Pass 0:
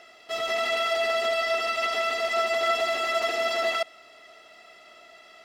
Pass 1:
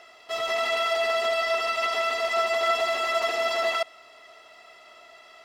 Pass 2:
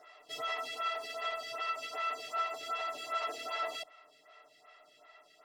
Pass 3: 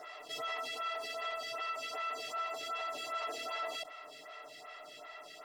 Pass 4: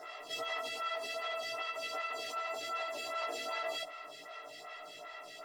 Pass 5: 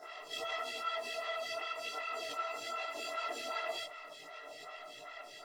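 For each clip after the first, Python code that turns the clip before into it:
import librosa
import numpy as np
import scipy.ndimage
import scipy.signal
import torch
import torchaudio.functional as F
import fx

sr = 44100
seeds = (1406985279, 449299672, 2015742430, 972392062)

y1 = fx.graphic_eq_31(x, sr, hz=(200, 315, 1000), db=(-7, -4, 8))
y2 = y1 + 0.7 * np.pad(y1, (int(6.7 * sr / 1000.0), 0))[:len(y1)]
y2 = fx.rider(y2, sr, range_db=4, speed_s=0.5)
y2 = fx.stagger_phaser(y2, sr, hz=2.6)
y2 = F.gain(torch.from_numpy(y2), -9.0).numpy()
y3 = fx.env_flatten(y2, sr, amount_pct=50)
y3 = F.gain(torch.from_numpy(y3), -5.0).numpy()
y4 = fx.doubler(y3, sr, ms=17.0, db=-3)
y5 = fx.chorus_voices(y4, sr, voices=6, hz=0.9, base_ms=24, depth_ms=4.7, mix_pct=55)
y5 = F.gain(torch.from_numpy(y5), 2.0).numpy()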